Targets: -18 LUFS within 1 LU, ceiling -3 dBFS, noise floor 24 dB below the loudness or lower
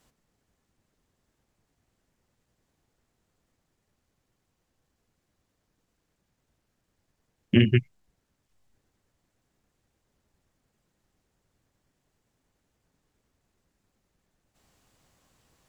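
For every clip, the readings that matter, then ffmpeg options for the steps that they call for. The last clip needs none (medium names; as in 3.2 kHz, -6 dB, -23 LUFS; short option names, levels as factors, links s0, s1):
loudness -23.0 LUFS; peak level -6.0 dBFS; loudness target -18.0 LUFS
-> -af "volume=1.78,alimiter=limit=0.708:level=0:latency=1"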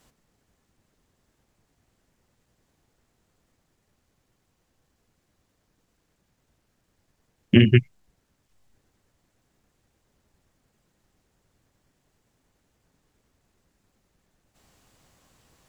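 loudness -18.5 LUFS; peak level -3.0 dBFS; noise floor -73 dBFS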